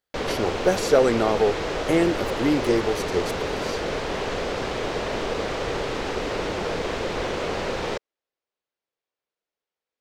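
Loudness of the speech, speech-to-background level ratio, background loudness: −23.5 LKFS, 4.0 dB, −27.5 LKFS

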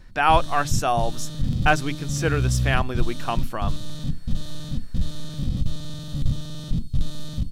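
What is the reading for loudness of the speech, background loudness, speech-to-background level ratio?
−24.5 LKFS, −29.5 LKFS, 5.0 dB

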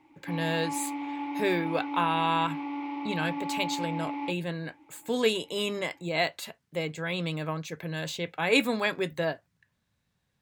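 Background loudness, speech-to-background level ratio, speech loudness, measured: −35.0 LKFS, 4.5 dB, −30.5 LKFS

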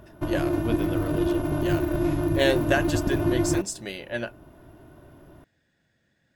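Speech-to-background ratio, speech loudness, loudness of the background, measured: −5.0 dB, −30.5 LKFS, −25.5 LKFS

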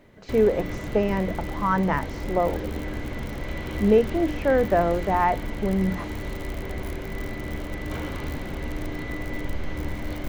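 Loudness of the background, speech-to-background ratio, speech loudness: −33.0 LKFS, 9.0 dB, −24.0 LKFS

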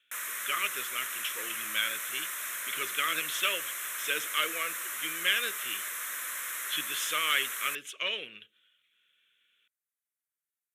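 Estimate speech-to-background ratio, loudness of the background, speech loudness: 2.0 dB, −34.5 LKFS, −32.5 LKFS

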